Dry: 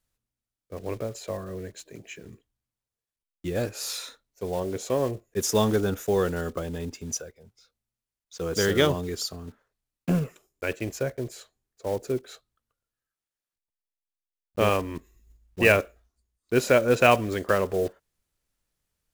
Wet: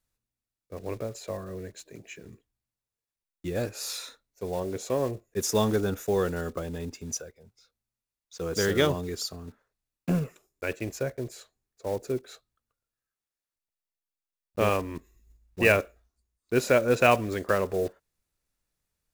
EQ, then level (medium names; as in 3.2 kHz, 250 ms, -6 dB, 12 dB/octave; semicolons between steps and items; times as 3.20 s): band-stop 3.1 kHz, Q 16; -2.0 dB